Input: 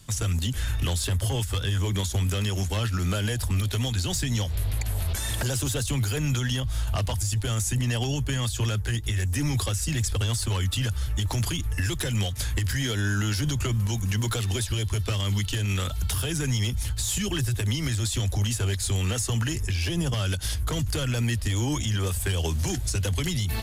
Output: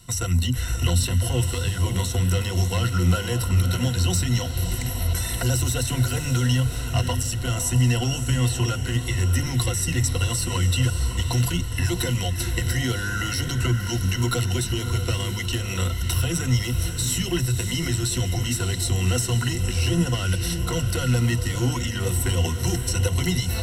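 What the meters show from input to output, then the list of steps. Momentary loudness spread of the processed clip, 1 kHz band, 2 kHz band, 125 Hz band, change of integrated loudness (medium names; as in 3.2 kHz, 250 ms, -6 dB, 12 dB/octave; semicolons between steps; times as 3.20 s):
4 LU, +4.5 dB, +3.0 dB, +3.5 dB, +3.5 dB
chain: rippled EQ curve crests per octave 2, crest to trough 16 dB; echo that smears into a reverb 603 ms, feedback 46%, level -8 dB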